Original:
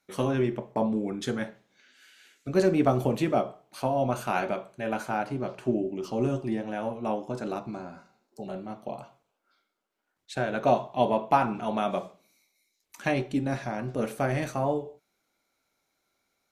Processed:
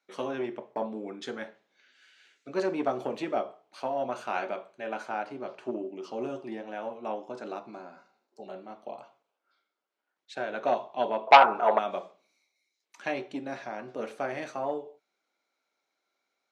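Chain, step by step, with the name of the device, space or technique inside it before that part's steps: 11.27–11.79 s: high-order bell 810 Hz +13 dB 2.3 oct; public-address speaker with an overloaded transformer (transformer saturation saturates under 1.7 kHz; band-pass 340–5400 Hz); trim -3 dB

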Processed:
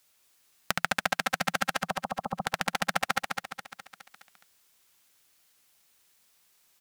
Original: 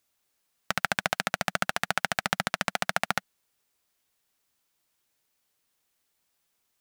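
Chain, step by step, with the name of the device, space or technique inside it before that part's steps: 1.82–2.42 s: steep low-pass 1.2 kHz 96 dB/octave; peaking EQ 170 Hz +2.5 dB 0.22 oct; feedback delay 208 ms, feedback 45%, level -5 dB; noise-reduction cassette on a plain deck (tape noise reduction on one side only encoder only; wow and flutter 20 cents; white noise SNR 37 dB); trim -1.5 dB

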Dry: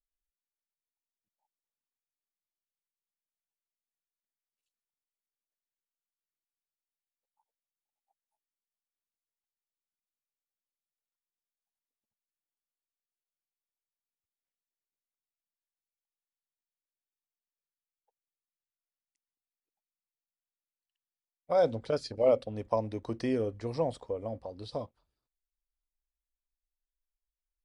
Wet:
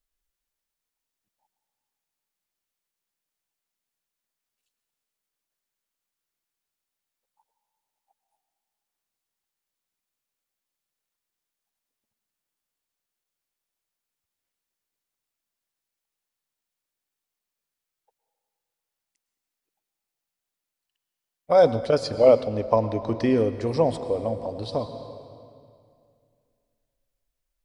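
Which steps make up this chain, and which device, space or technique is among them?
22.41–23.38 s: distance through air 72 m; compressed reverb return (on a send at -8 dB: reverberation RT60 2.3 s, pre-delay 101 ms + compression, threshold -31 dBFS, peak gain reduction 10 dB); on the sum: trim +9 dB

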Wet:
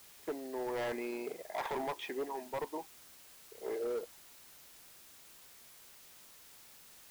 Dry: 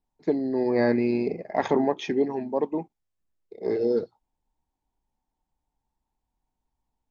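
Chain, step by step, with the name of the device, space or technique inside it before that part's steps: drive-through speaker (band-pass 550–3600 Hz; peaking EQ 1 kHz +7.5 dB 0.21 oct; hard clipper -26.5 dBFS, distortion -8 dB; white noise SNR 15 dB); trim -6 dB

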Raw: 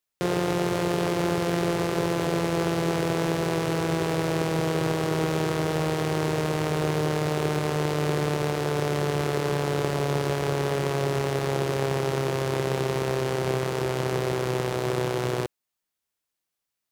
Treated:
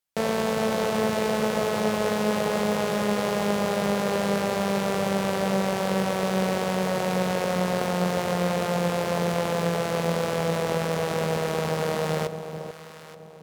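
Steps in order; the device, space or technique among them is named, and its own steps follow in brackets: nightcore (tape speed +26%); echo whose repeats swap between lows and highs 438 ms, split 950 Hz, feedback 54%, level -8 dB

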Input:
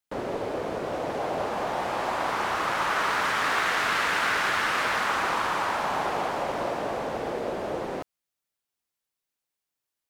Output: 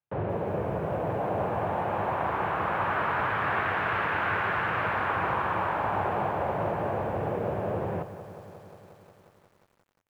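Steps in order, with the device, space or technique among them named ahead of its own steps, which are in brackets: sub-octave bass pedal (octave divider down 1 oct, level +2 dB; cabinet simulation 63–2300 Hz, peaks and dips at 100 Hz +8 dB, 250 Hz -8 dB, 1.3 kHz -4 dB, 2 kHz -6 dB); bit-crushed delay 178 ms, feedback 80%, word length 9-bit, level -14 dB

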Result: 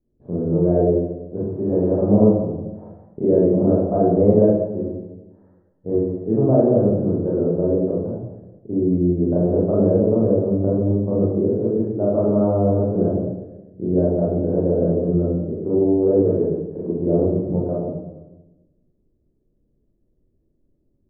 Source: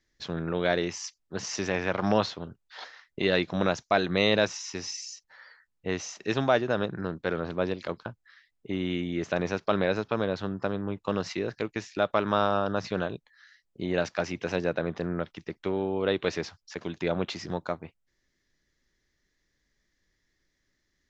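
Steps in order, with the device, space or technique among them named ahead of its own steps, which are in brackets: next room (low-pass 560 Hz 24 dB/octave; reverberation RT60 1.1 s, pre-delay 24 ms, DRR -7.5 dB); trim +4 dB

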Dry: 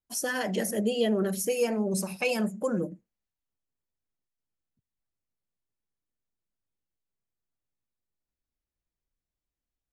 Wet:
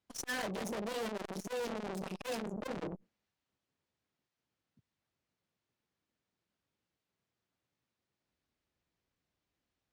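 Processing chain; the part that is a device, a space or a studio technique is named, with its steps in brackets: valve radio (band-pass 95–4700 Hz; valve stage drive 46 dB, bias 0.65; transformer saturation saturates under 430 Hz); trim +12.5 dB

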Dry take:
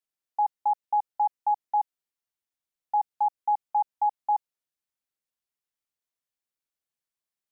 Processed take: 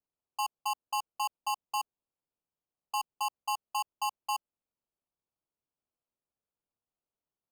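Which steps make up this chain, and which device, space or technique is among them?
crushed at another speed (playback speed 0.8×; sample-and-hold 29×; playback speed 1.25×); trim -8 dB

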